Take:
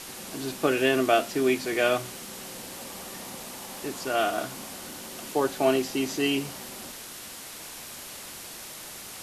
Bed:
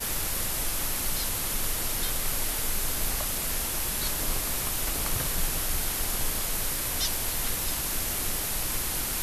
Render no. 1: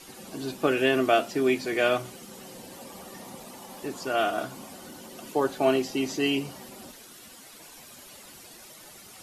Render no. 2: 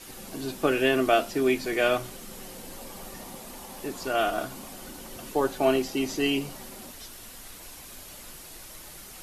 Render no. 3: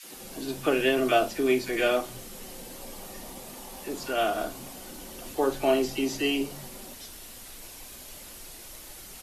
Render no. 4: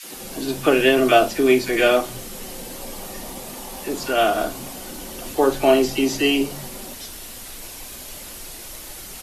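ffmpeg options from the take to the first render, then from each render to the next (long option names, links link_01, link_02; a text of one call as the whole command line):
ffmpeg -i in.wav -af "afftdn=noise_reduction=11:noise_floor=-42" out.wav
ffmpeg -i in.wav -i bed.wav -filter_complex "[1:a]volume=-17.5dB[link_01];[0:a][link_01]amix=inputs=2:normalize=0" out.wav
ffmpeg -i in.wav -filter_complex "[0:a]asplit=2[link_01][link_02];[link_02]adelay=44,volume=-13.5dB[link_03];[link_01][link_03]amix=inputs=2:normalize=0,acrossover=split=150|1300[link_04][link_05][link_06];[link_05]adelay=30[link_07];[link_04]adelay=140[link_08];[link_08][link_07][link_06]amix=inputs=3:normalize=0" out.wav
ffmpeg -i in.wav -af "volume=8dB" out.wav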